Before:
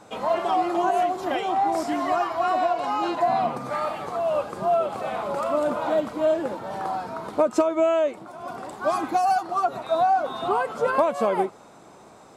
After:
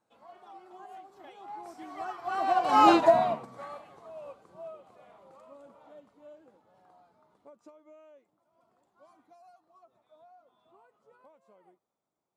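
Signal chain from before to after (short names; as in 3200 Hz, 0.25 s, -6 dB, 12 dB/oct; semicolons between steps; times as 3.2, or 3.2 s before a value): Doppler pass-by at 2.86, 18 m/s, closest 2.6 m; upward expander 1.5:1, over -47 dBFS; gain +8.5 dB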